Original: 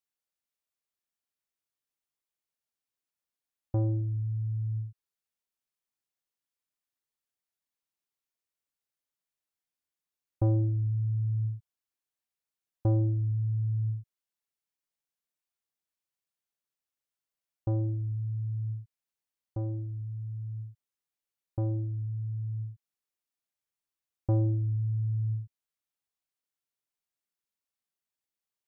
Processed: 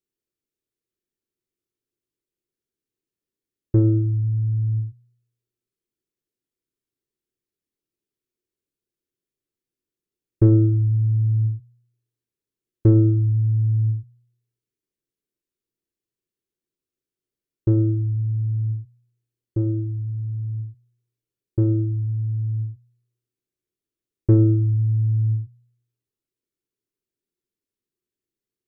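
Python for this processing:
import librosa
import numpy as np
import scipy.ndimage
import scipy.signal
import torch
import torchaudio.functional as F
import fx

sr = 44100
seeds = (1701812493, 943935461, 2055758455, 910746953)

y = fx.tracing_dist(x, sr, depth_ms=0.3)
y = fx.low_shelf_res(y, sr, hz=540.0, db=11.0, q=3.0)
y = fx.comb_fb(y, sr, f0_hz=120.0, decay_s=0.74, harmonics='odd', damping=0.0, mix_pct=70)
y = y * librosa.db_to_amplitude(7.5)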